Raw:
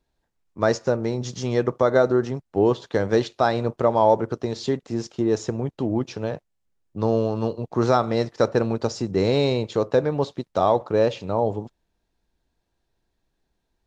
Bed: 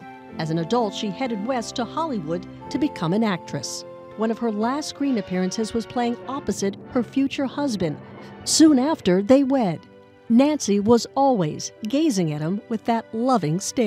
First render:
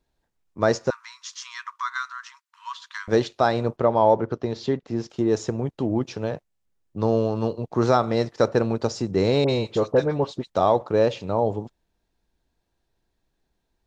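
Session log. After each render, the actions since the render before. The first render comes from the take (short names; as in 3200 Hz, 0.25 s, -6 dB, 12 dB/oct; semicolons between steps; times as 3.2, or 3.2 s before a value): 0.9–3.08 brick-wall FIR high-pass 930 Hz; 3.77–5.1 air absorption 110 m; 9.44–10.5 dispersion highs, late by 51 ms, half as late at 1600 Hz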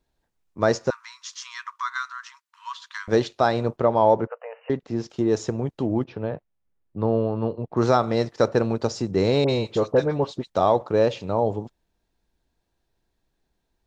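4.27–4.7 brick-wall FIR band-pass 460–3000 Hz; 6.04–7.77 air absorption 380 m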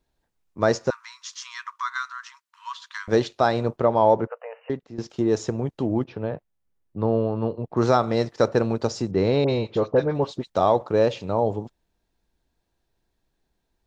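4.56–4.98 fade out, to -14 dB; 9.11–10.15 air absorption 150 m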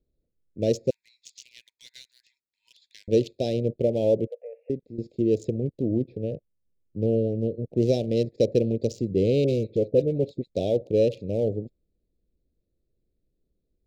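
Wiener smoothing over 15 samples; elliptic band-stop 540–2600 Hz, stop band 80 dB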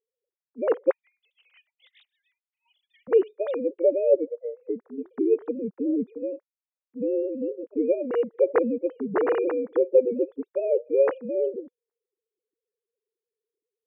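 sine-wave speech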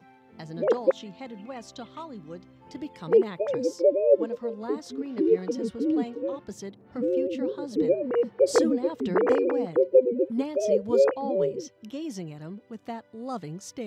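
add bed -14.5 dB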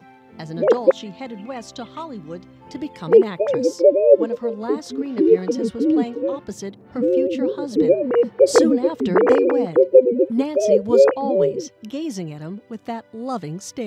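gain +7.5 dB; limiter -1 dBFS, peak gain reduction 0.5 dB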